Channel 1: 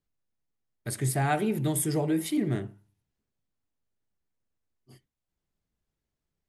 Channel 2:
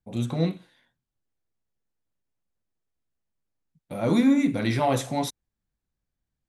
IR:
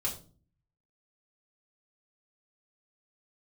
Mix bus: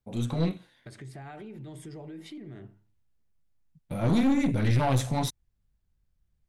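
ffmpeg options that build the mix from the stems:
-filter_complex "[0:a]lowpass=4600,alimiter=level_in=1.33:limit=0.0631:level=0:latency=1:release=65,volume=0.75,acompressor=threshold=0.0112:ratio=2,volume=0.596[s0];[1:a]asubboost=boost=5:cutoff=150,aeval=exprs='(tanh(10*val(0)+0.45)-tanh(0.45))/10':c=same,volume=1.12[s1];[s0][s1]amix=inputs=2:normalize=0"

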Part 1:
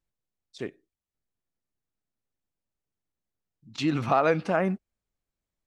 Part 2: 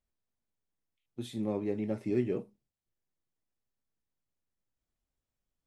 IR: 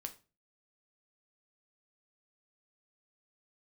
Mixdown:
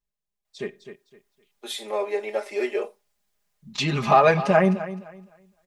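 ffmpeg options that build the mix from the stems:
-filter_complex "[0:a]equalizer=f=260:w=1.5:g=-5,bandreject=f=1400:w=8.6,volume=0.422,asplit=3[s0][s1][s2];[s1]volume=0.473[s3];[s2]volume=0.251[s4];[1:a]highpass=f=540:w=0.5412,highpass=f=540:w=1.3066,adelay=450,volume=1.19[s5];[2:a]atrim=start_sample=2205[s6];[s3][s6]afir=irnorm=-1:irlink=0[s7];[s4]aecho=0:1:257|514|771|1028:1|0.24|0.0576|0.0138[s8];[s0][s5][s7][s8]amix=inputs=4:normalize=0,aecho=1:1:4.9:0.92,dynaudnorm=f=450:g=3:m=3.76"

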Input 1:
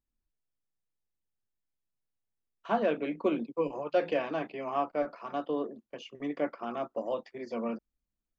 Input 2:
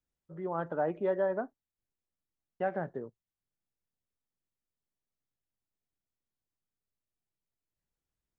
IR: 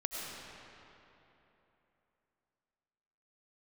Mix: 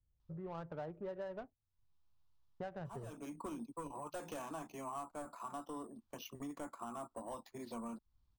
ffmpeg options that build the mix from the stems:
-filter_complex "[0:a]acrusher=samples=5:mix=1:aa=0.000001,asoftclip=type=tanh:threshold=0.0631,equalizer=f=125:t=o:w=1:g=-7,equalizer=f=250:t=o:w=1:g=8,equalizer=f=500:t=o:w=1:g=-8,equalizer=f=1000:t=o:w=1:g=11,equalizer=f=2000:t=o:w=1:g=-8,equalizer=f=4000:t=o:w=1:g=5,adelay=200,volume=0.944[s0];[1:a]adynamicsmooth=sensitivity=5:basefreq=760,volume=1.06,asplit=2[s1][s2];[s2]apad=whole_len=378569[s3];[s0][s3]sidechaincompress=threshold=0.00355:ratio=4:attack=12:release=440[s4];[s4][s1]amix=inputs=2:normalize=0,lowshelf=f=160:t=q:w=1.5:g=12,acompressor=threshold=0.00501:ratio=3"

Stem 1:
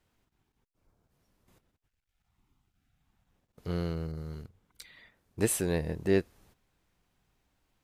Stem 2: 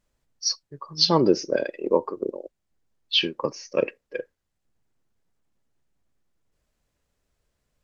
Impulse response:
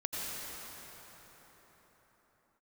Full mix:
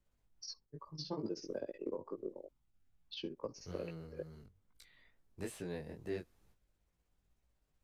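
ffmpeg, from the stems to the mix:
-filter_complex "[0:a]volume=0.355[s0];[1:a]equalizer=f=2400:w=0.64:g=-7.5,alimiter=limit=0.188:level=0:latency=1:release=142,tremolo=f=16:d=0.99,volume=0.708[s1];[s0][s1]amix=inputs=2:normalize=0,lowshelf=f=79:g=8.5,acrossover=split=160|690|5400[s2][s3][s4][s5];[s2]acompressor=threshold=0.00316:ratio=4[s6];[s3]acompressor=threshold=0.0178:ratio=4[s7];[s4]acompressor=threshold=0.00562:ratio=4[s8];[s5]acompressor=threshold=0.00224:ratio=4[s9];[s6][s7][s8][s9]amix=inputs=4:normalize=0,flanger=delay=17.5:depth=4:speed=2.3"

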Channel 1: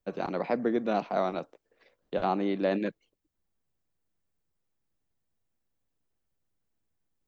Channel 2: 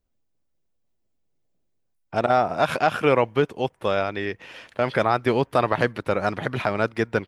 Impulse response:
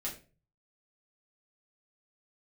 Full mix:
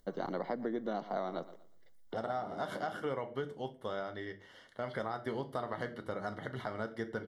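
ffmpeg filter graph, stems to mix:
-filter_complex "[0:a]agate=range=0.126:threshold=0.001:ratio=16:detection=peak,volume=0.75,asplit=2[s0][s1];[s1]volume=0.119[s2];[1:a]acompressor=mode=upward:threshold=0.0158:ratio=2.5,volume=0.133,asplit=3[s3][s4][s5];[s4]volume=0.631[s6];[s5]apad=whole_len=320832[s7];[s0][s7]sidechaincompress=threshold=0.002:ratio=8:attack=20:release=681[s8];[2:a]atrim=start_sample=2205[s9];[s6][s9]afir=irnorm=-1:irlink=0[s10];[s2]aecho=0:1:119|238|357|476:1|0.29|0.0841|0.0244[s11];[s8][s3][s10][s11]amix=inputs=4:normalize=0,asuperstop=centerf=2500:order=8:qfactor=4.2,acompressor=threshold=0.0251:ratio=6"

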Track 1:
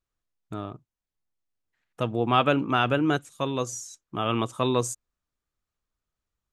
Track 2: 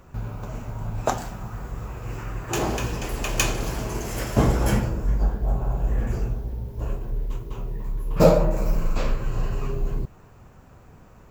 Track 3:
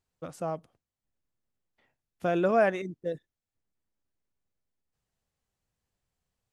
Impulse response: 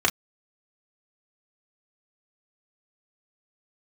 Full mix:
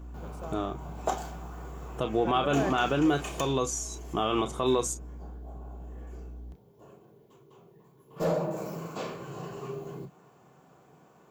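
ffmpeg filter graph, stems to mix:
-filter_complex "[0:a]alimiter=limit=0.188:level=0:latency=1:release=429,aeval=exprs='val(0)+0.00708*(sin(2*PI*60*n/s)+sin(2*PI*2*60*n/s)/2+sin(2*PI*3*60*n/s)/3+sin(2*PI*4*60*n/s)/4+sin(2*PI*5*60*n/s)/5)':c=same,volume=1,asplit=3[s0][s1][s2];[s1]volume=0.2[s3];[1:a]highpass=f=130:w=0.5412,highpass=f=130:w=1.3066,asoftclip=type=tanh:threshold=0.237,volume=1.5,afade=t=out:st=3.22:d=0.29:silence=0.251189,afade=t=in:st=8.08:d=0.41:silence=0.281838,asplit=2[s4][s5];[s5]volume=0.188[s6];[2:a]volume=0.355[s7];[s2]apad=whole_len=498464[s8];[s4][s8]sidechaincompress=threshold=0.00708:ratio=8:attack=16:release=164[s9];[3:a]atrim=start_sample=2205[s10];[s3][s6]amix=inputs=2:normalize=0[s11];[s11][s10]afir=irnorm=-1:irlink=0[s12];[s0][s9][s7][s12]amix=inputs=4:normalize=0,alimiter=limit=0.168:level=0:latency=1:release=68"

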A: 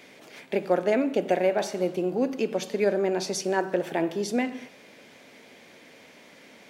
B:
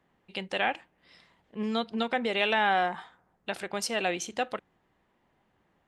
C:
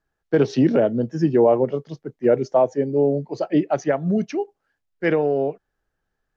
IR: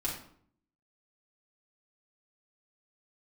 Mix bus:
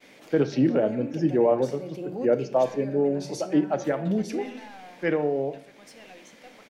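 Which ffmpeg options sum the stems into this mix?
-filter_complex "[0:a]agate=range=0.0224:threshold=0.00355:ratio=3:detection=peak,alimiter=limit=0.0841:level=0:latency=1,volume=0.891,asplit=2[s0][s1];[s1]volume=0.15[s2];[1:a]asoftclip=type=tanh:threshold=0.0596,adelay=2050,volume=0.106,asplit=2[s3][s4];[s4]volume=0.335[s5];[2:a]bandreject=f=114.1:t=h:w=4,bandreject=f=228.2:t=h:w=4,bandreject=f=342.3:t=h:w=4,bandreject=f=456.4:t=h:w=4,bandreject=f=570.5:t=h:w=4,bandreject=f=684.6:t=h:w=4,bandreject=f=798.7:t=h:w=4,bandreject=f=912.8:t=h:w=4,bandreject=f=1026.9:t=h:w=4,bandreject=f=1141:t=h:w=4,bandreject=f=1255.1:t=h:w=4,bandreject=f=1369.2:t=h:w=4,bandreject=f=1483.3:t=h:w=4,bandreject=f=1597.4:t=h:w=4,bandreject=f=1711.5:t=h:w=4,bandreject=f=1825.6:t=h:w=4,bandreject=f=1939.7:t=h:w=4,bandreject=f=2053.8:t=h:w=4,bandreject=f=2167.9:t=h:w=4,bandreject=f=2282:t=h:w=4,bandreject=f=2396.1:t=h:w=4,bandreject=f=2510.2:t=h:w=4,bandreject=f=2624.3:t=h:w=4,bandreject=f=2738.4:t=h:w=4,bandreject=f=2852.5:t=h:w=4,bandreject=f=2966.6:t=h:w=4,bandreject=f=3080.7:t=h:w=4,bandreject=f=3194.8:t=h:w=4,bandreject=f=3308.9:t=h:w=4,bandreject=f=3423:t=h:w=4,bandreject=f=3537.1:t=h:w=4,bandreject=f=3651.2:t=h:w=4,bandreject=f=3765.3:t=h:w=4,bandreject=f=3879.4:t=h:w=4,bandreject=f=3993.5:t=h:w=4,bandreject=f=4107.6:t=h:w=4,bandreject=f=4221.7:t=h:w=4,bandreject=f=4335.8:t=h:w=4,bandreject=f=4449.9:t=h:w=4,volume=0.501,asplit=3[s6][s7][s8];[s7]volume=0.178[s9];[s8]apad=whole_len=295043[s10];[s0][s10]sidechaincompress=threshold=0.00891:ratio=3:attack=33:release=415[s11];[3:a]atrim=start_sample=2205[s12];[s2][s5][s9]amix=inputs=3:normalize=0[s13];[s13][s12]afir=irnorm=-1:irlink=0[s14];[s11][s3][s6][s14]amix=inputs=4:normalize=0"

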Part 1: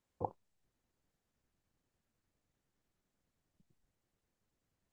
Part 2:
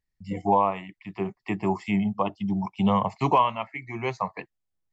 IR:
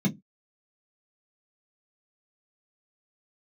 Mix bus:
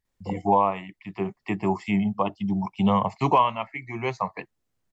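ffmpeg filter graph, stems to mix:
-filter_complex "[0:a]adelay=50,volume=1.41[s0];[1:a]volume=1.12,asplit=2[s1][s2];[s2]apad=whole_len=219444[s3];[s0][s3]sidechaincompress=threshold=0.0631:ratio=8:attack=10:release=1090[s4];[s4][s1]amix=inputs=2:normalize=0"

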